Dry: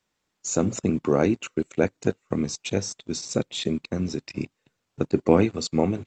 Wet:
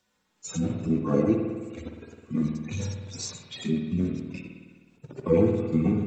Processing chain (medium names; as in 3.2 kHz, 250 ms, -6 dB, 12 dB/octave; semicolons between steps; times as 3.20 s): harmonic-percussive separation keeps harmonic; hum notches 50/100 Hz; in parallel at +2 dB: compression, threshold -37 dBFS, peak gain reduction 18.5 dB; on the sum: spring tank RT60 1.5 s, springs 52 ms, chirp 50 ms, DRR 2.5 dB